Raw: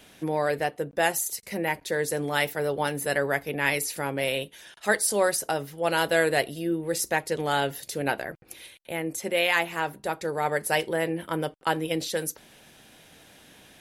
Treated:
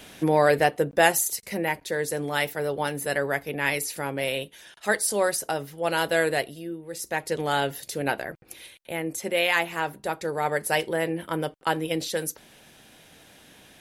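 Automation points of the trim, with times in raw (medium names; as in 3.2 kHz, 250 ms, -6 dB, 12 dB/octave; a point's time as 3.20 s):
0.81 s +6.5 dB
1.88 s -0.5 dB
6.30 s -0.5 dB
6.86 s -10 dB
7.28 s +0.5 dB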